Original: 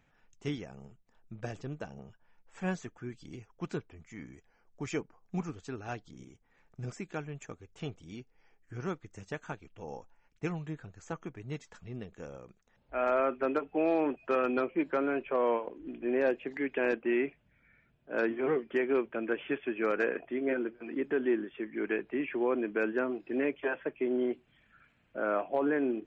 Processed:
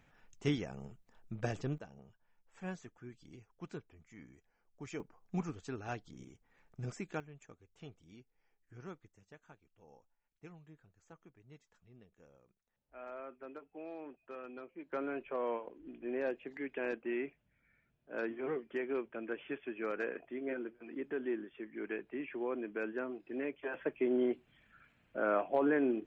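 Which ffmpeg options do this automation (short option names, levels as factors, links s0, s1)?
-af "asetnsamples=n=441:p=0,asendcmd='1.78 volume volume -9dB;5 volume volume -2dB;7.2 volume volume -12dB;9.08 volume volume -18.5dB;14.92 volume volume -8dB;23.74 volume volume -1dB',volume=1.33"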